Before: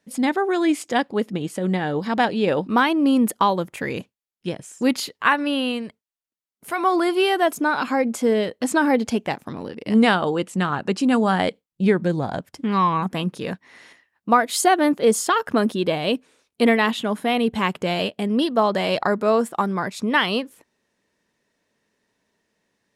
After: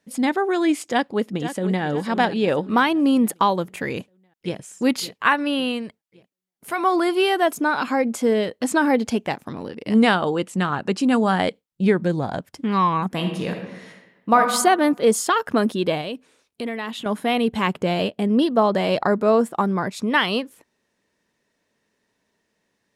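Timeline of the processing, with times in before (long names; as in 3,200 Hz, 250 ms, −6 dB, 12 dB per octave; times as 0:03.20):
0:00.89–0:01.83: delay throw 500 ms, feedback 45%, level −11 dB
0:03.88–0:04.57: delay throw 560 ms, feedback 50%, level −14.5 dB
0:13.13–0:14.40: thrown reverb, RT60 1.1 s, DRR 3 dB
0:16.01–0:17.06: downward compressor 2.5 to 1, threshold −30 dBFS
0:17.67–0:19.93: tilt shelving filter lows +3 dB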